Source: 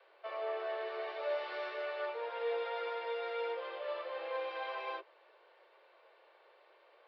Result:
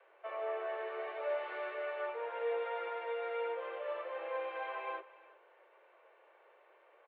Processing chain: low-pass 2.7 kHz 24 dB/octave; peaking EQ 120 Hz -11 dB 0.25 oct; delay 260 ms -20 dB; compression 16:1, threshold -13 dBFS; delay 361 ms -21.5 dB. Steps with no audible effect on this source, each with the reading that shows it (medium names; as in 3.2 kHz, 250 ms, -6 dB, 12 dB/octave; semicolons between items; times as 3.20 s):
peaking EQ 120 Hz: input has nothing below 320 Hz; compression, threshold -13 dBFS: peak at its input -26.0 dBFS